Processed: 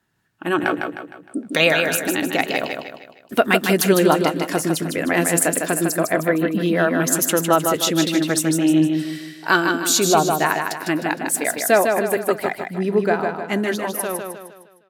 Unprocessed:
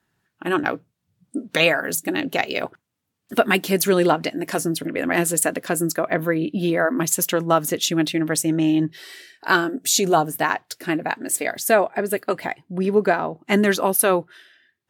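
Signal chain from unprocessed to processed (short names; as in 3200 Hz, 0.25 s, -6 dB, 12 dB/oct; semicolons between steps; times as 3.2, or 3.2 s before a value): ending faded out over 2.45 s; feedback echo 0.154 s, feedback 43%, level -5 dB; gain +1 dB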